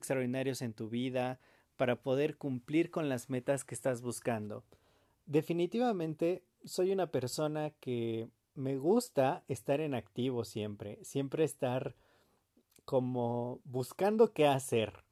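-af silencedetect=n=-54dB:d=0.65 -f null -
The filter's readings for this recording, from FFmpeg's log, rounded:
silence_start: 11.92
silence_end: 12.72 | silence_duration: 0.80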